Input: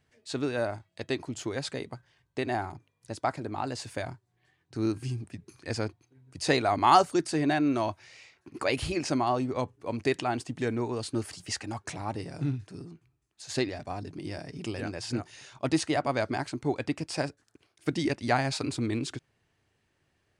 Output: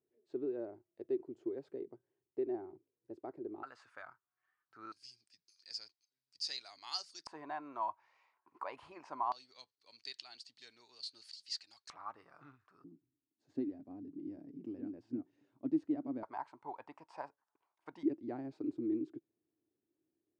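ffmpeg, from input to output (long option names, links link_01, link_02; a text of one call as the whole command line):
ffmpeg -i in.wav -af "asetnsamples=nb_out_samples=441:pad=0,asendcmd='3.63 bandpass f 1300;4.92 bandpass f 4900;7.27 bandpass f 990;9.32 bandpass f 4400;11.9 bandpass f 1200;12.84 bandpass f 280;16.23 bandpass f 940;18.03 bandpass f 320',bandpass=frequency=370:width_type=q:width=6.5:csg=0" out.wav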